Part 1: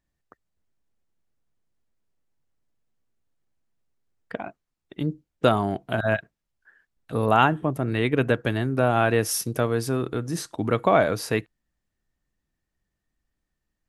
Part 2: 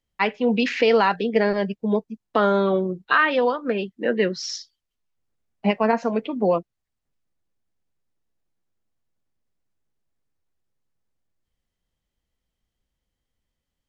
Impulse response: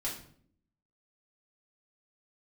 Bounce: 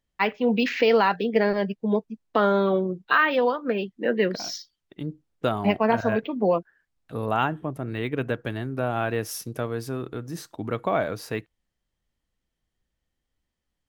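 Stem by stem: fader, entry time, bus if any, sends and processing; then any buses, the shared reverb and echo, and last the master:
−5.5 dB, 0.00 s, no send, no processing
−1.5 dB, 0.00 s, no send, no processing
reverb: not used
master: linearly interpolated sample-rate reduction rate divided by 2×

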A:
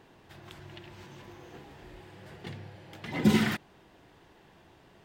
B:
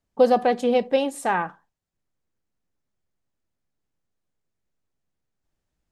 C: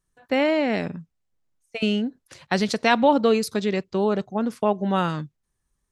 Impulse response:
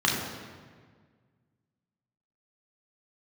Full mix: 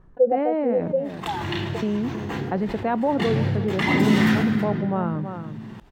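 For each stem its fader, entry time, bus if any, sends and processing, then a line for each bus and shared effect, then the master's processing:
+1.0 dB, 0.75 s, send −6.5 dB, echo send −15.5 dB, noise gate −46 dBFS, range −23 dB; downward compressor 2.5 to 1, threshold −33 dBFS, peak gain reduction 11 dB
−3.0 dB, 0.00 s, no send, no echo send, every bin expanded away from the loudest bin 2.5 to 1
−11.5 dB, 0.00 s, no send, echo send −16.5 dB, low-pass filter 1,000 Hz 12 dB per octave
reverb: on, RT60 1.7 s, pre-delay 3 ms
echo: single-tap delay 323 ms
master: envelope flattener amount 50%

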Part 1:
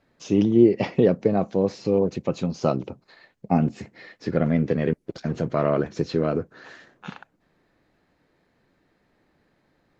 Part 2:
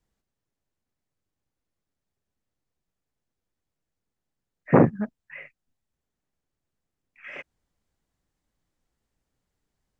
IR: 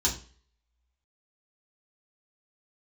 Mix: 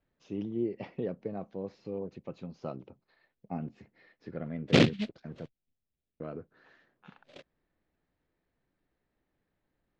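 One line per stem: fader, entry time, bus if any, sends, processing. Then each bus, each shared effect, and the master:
−16.5 dB, 0.00 s, muted 0:05.46–0:06.20, no send, no processing
−4.5 dB, 0.00 s, no send, Butterworth low-pass 750 Hz; short delay modulated by noise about 2,900 Hz, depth 0.21 ms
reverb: not used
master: low-pass filter 3,800 Hz 12 dB per octave

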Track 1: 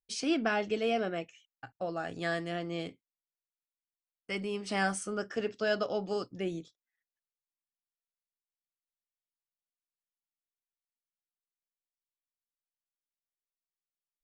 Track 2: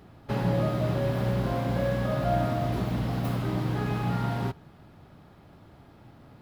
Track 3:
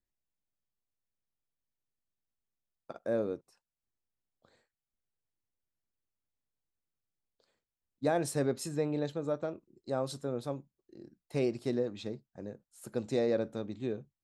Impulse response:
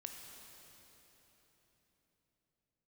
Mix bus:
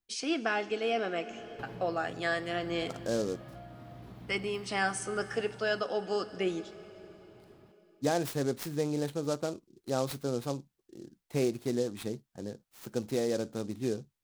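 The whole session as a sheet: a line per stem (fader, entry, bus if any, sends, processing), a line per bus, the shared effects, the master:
+1.5 dB, 0.00 s, send −5.5 dB, bass and treble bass −10 dB, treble −1 dB
−13.0 dB, 1.30 s, no send, downward compressor 6 to 1, threshold −33 dBFS, peak gain reduction 12 dB
+0.5 dB, 0.00 s, no send, short delay modulated by noise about 5,100 Hz, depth 0.04 ms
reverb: on, RT60 4.1 s, pre-delay 15 ms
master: parametric band 590 Hz −4.5 dB 0.23 octaves; speech leveller within 3 dB 0.5 s

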